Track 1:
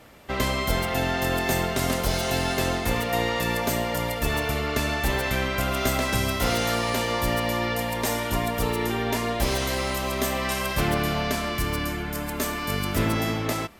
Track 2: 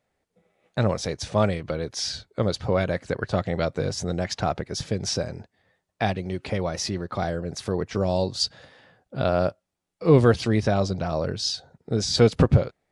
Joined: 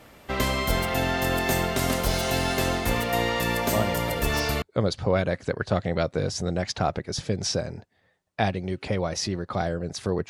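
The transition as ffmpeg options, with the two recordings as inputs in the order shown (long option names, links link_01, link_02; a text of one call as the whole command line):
ffmpeg -i cue0.wav -i cue1.wav -filter_complex "[1:a]asplit=2[link_01][link_02];[0:a]apad=whole_dur=10.29,atrim=end=10.29,atrim=end=4.622[link_03];[link_02]atrim=start=2.238:end=7.91[link_04];[link_01]atrim=start=1.28:end=2.24,asetpts=PTS-STARTPTS,volume=-6dB,afade=type=in:duration=0.004:curve=hsin,afade=type=out:start_time=0.956:duration=0.004:curve=hsin,adelay=3660[link_05];[link_03][link_04]acrossfade=duration=0.004:curve1=hsin:curve2=hsin[link_06];[link_06][link_05]amix=inputs=2:normalize=0" out.wav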